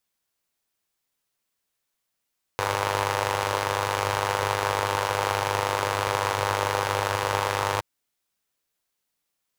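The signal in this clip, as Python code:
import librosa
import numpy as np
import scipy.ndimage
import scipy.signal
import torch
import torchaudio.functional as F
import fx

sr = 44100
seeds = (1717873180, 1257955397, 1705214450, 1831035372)

y = fx.engine_four(sr, seeds[0], length_s=5.22, rpm=3000, resonances_hz=(110.0, 520.0, 890.0))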